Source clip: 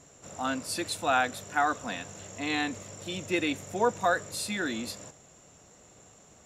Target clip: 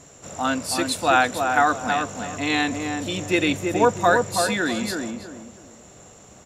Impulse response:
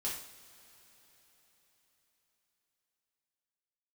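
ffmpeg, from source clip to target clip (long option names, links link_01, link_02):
-filter_complex "[0:a]asplit=2[link_01][link_02];[link_02]adelay=325,lowpass=frequency=1200:poles=1,volume=-3.5dB,asplit=2[link_03][link_04];[link_04]adelay=325,lowpass=frequency=1200:poles=1,volume=0.31,asplit=2[link_05][link_06];[link_06]adelay=325,lowpass=frequency=1200:poles=1,volume=0.31,asplit=2[link_07][link_08];[link_08]adelay=325,lowpass=frequency=1200:poles=1,volume=0.31[link_09];[link_01][link_03][link_05][link_07][link_09]amix=inputs=5:normalize=0,volume=7.5dB"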